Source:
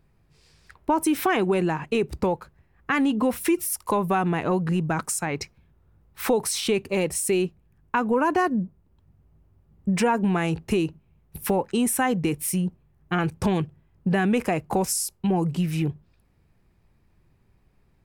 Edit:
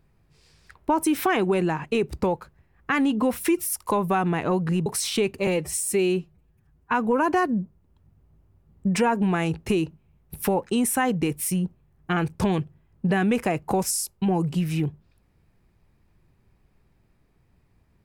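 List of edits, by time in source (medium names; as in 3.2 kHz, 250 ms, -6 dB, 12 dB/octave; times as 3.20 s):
4.86–6.37 s: delete
6.98–7.96 s: stretch 1.5×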